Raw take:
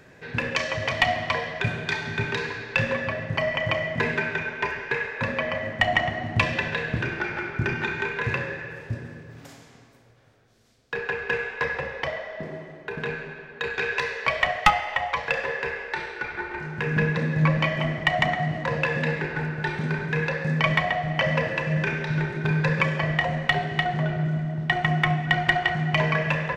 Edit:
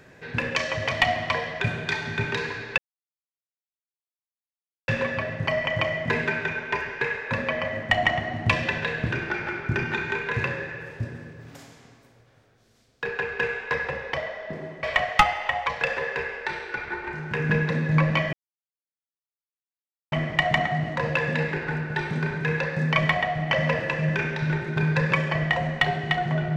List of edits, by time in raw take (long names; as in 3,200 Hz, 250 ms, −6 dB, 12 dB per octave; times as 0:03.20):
0:02.78: splice in silence 2.10 s
0:12.73–0:14.30: remove
0:17.80: splice in silence 1.79 s